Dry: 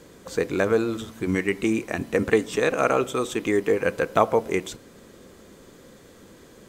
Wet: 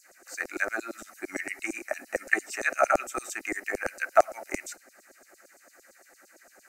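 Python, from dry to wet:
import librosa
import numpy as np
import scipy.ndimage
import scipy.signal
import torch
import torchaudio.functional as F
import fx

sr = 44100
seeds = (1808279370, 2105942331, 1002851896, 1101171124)

y = fx.filter_lfo_highpass(x, sr, shape='saw_down', hz=8.8, low_hz=450.0, high_hz=6900.0, q=2.0)
y = fx.fixed_phaser(y, sr, hz=680.0, stages=8)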